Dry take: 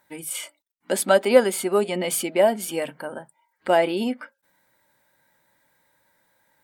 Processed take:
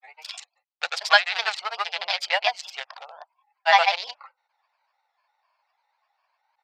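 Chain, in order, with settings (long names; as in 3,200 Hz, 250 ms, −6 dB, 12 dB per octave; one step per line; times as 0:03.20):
adaptive Wiener filter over 25 samples
granular cloud, grains 20 per second, pitch spread up and down by 3 semitones
elliptic band-pass filter 740–5,000 Hz, stop band 40 dB
spectral tilt +5.5 dB per octave
level +6 dB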